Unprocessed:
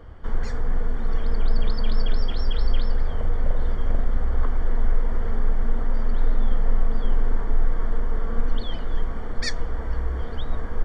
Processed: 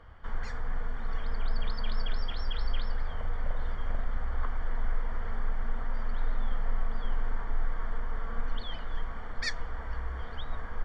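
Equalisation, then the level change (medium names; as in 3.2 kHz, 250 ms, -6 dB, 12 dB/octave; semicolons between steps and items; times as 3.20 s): low-pass 2.1 kHz 6 dB/octave; bass shelf 220 Hz -11.5 dB; peaking EQ 370 Hz -12.5 dB 2 oct; +2.0 dB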